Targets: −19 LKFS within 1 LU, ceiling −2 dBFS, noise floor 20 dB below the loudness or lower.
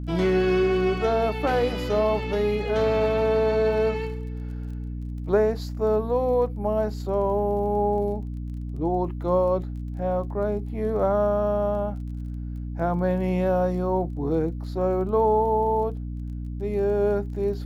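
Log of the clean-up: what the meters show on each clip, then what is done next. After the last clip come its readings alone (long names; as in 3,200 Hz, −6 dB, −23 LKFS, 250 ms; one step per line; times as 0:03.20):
crackle rate 22 per second; mains hum 60 Hz; hum harmonics up to 300 Hz; level of the hum −29 dBFS; integrated loudness −25.0 LKFS; sample peak −10.0 dBFS; target loudness −19.0 LKFS
→ click removal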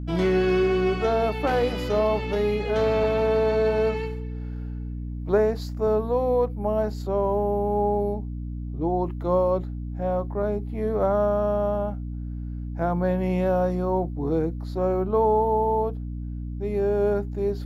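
crackle rate 0 per second; mains hum 60 Hz; hum harmonics up to 300 Hz; level of the hum −29 dBFS
→ mains-hum notches 60/120/180/240/300 Hz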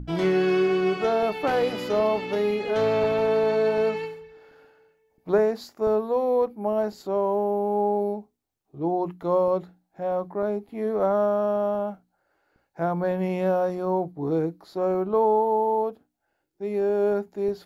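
mains hum none found; integrated loudness −25.0 LKFS; sample peak −10.0 dBFS; target loudness −19.0 LKFS
→ level +6 dB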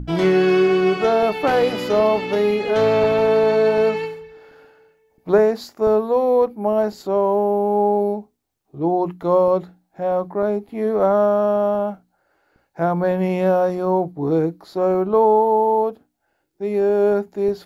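integrated loudness −19.0 LKFS; sample peak −4.0 dBFS; background noise floor −69 dBFS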